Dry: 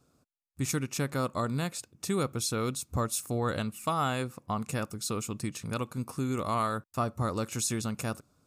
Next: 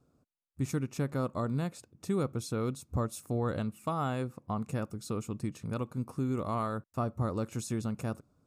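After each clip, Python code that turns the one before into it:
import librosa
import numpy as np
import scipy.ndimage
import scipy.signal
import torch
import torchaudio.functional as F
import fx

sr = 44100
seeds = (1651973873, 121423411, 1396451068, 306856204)

y = fx.tilt_shelf(x, sr, db=6.0, hz=1300.0)
y = y * librosa.db_to_amplitude(-6.0)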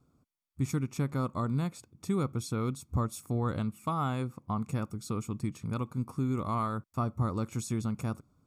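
y = x + 0.39 * np.pad(x, (int(0.9 * sr / 1000.0), 0))[:len(x)]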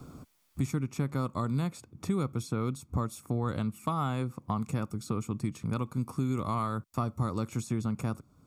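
y = fx.band_squash(x, sr, depth_pct=70)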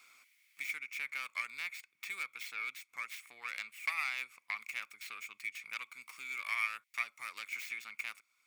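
y = fx.tracing_dist(x, sr, depth_ms=0.24)
y = fx.highpass_res(y, sr, hz=2200.0, q=8.4)
y = y * librosa.db_to_amplitude(-2.0)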